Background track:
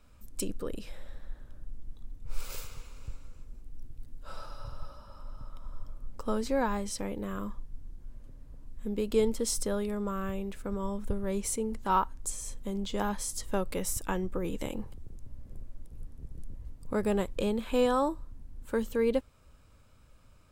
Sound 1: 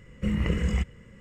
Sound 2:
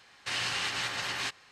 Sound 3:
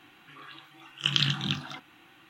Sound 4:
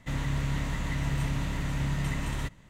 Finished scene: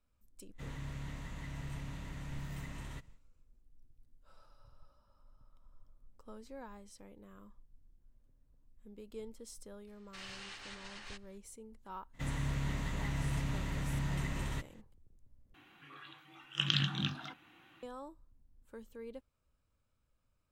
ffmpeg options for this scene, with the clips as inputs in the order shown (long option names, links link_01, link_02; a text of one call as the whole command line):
ffmpeg -i bed.wav -i cue0.wav -i cue1.wav -i cue2.wav -i cue3.wav -filter_complex "[4:a]asplit=2[link_01][link_02];[0:a]volume=-20dB[link_03];[2:a]aresample=22050,aresample=44100[link_04];[3:a]bass=frequency=250:gain=2,treble=frequency=4000:gain=-4[link_05];[link_03]asplit=2[link_06][link_07];[link_06]atrim=end=15.544[link_08];[link_05]atrim=end=2.29,asetpts=PTS-STARTPTS,volume=-5.5dB[link_09];[link_07]atrim=start=17.826[link_10];[link_01]atrim=end=2.69,asetpts=PTS-STARTPTS,volume=-13.5dB,afade=type=in:duration=0.1,afade=type=out:start_time=2.59:duration=0.1,adelay=520[link_11];[link_04]atrim=end=1.51,asetpts=PTS-STARTPTS,volume=-16.5dB,afade=type=in:duration=0.004:curve=hsin,afade=type=out:start_time=1.506:duration=0.004:curve=hsin,adelay=9870[link_12];[link_02]atrim=end=2.69,asetpts=PTS-STARTPTS,volume=-6dB,afade=type=in:duration=0.02,afade=type=out:start_time=2.67:duration=0.02,adelay=12130[link_13];[link_08][link_09]acrossfade=duration=0.004:curve1=hsin:curve2=hsin[link_14];[link_14][link_10]acrossfade=duration=0.004:curve1=hsin:curve2=hsin[link_15];[link_15][link_11][link_12][link_13]amix=inputs=4:normalize=0" out.wav